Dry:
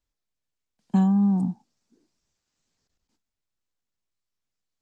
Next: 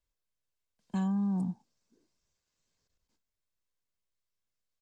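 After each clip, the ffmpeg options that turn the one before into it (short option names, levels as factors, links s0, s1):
-filter_complex "[0:a]aecho=1:1:1.9:0.31,acrossover=split=1200[s0][s1];[s0]alimiter=limit=0.0841:level=0:latency=1[s2];[s2][s1]amix=inputs=2:normalize=0,volume=0.631"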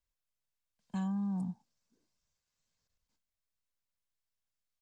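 -af "equalizer=f=360:t=o:w=0.8:g=-7.5,volume=0.708"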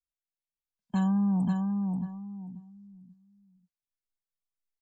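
-filter_complex "[0:a]asplit=2[s0][s1];[s1]aecho=0:1:536|1072|1608|2144:0.631|0.183|0.0531|0.0154[s2];[s0][s2]amix=inputs=2:normalize=0,afftdn=nr=22:nf=-58,volume=2.66"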